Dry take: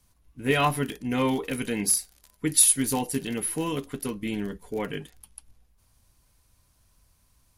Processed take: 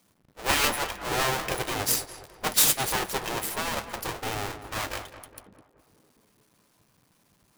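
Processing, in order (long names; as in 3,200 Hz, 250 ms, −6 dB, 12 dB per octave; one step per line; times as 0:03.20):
each half-wave held at its own peak
feedback echo with a low-pass in the loop 206 ms, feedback 55%, low-pass 2,000 Hz, level −11 dB
gate on every frequency bin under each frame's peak −10 dB weak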